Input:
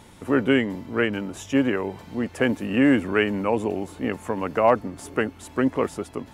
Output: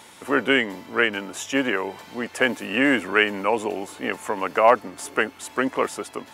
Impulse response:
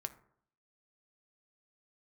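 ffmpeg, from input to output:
-af "highpass=frequency=940:poles=1,volume=7dB"

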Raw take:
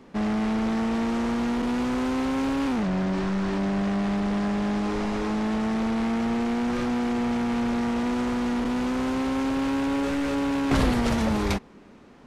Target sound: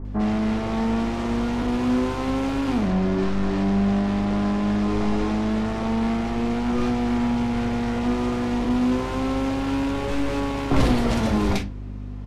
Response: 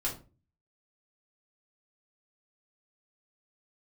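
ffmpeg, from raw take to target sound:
-filter_complex "[0:a]aeval=exprs='val(0)+0.02*(sin(2*PI*50*n/s)+sin(2*PI*2*50*n/s)/2+sin(2*PI*3*50*n/s)/3+sin(2*PI*4*50*n/s)/4+sin(2*PI*5*50*n/s)/5)':channel_layout=same,acrossover=split=1600[link_01][link_02];[link_02]adelay=50[link_03];[link_01][link_03]amix=inputs=2:normalize=0,asplit=2[link_04][link_05];[1:a]atrim=start_sample=2205,lowpass=6000[link_06];[link_05][link_06]afir=irnorm=-1:irlink=0,volume=-9dB[link_07];[link_04][link_07]amix=inputs=2:normalize=0"

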